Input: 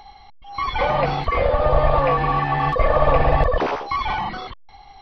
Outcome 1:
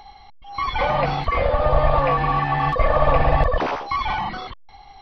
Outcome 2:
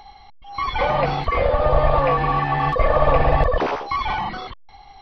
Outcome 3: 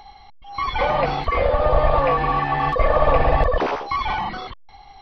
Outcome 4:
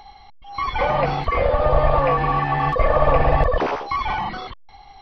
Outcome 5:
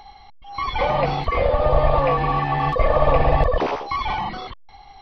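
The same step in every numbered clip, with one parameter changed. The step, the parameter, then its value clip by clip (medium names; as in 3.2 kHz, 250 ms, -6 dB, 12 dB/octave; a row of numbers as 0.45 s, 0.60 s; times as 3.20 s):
dynamic bell, frequency: 420 Hz, 9.6 kHz, 130 Hz, 3.8 kHz, 1.5 kHz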